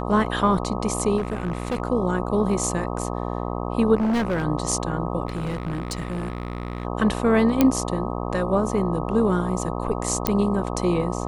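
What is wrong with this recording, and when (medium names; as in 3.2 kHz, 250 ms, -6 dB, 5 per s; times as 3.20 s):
buzz 60 Hz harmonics 21 -28 dBFS
1.17–1.80 s: clipped -21 dBFS
3.95–4.45 s: clipped -19 dBFS
5.27–6.85 s: clipped -23.5 dBFS
7.61 s: pop -4 dBFS
10.27 s: pop -4 dBFS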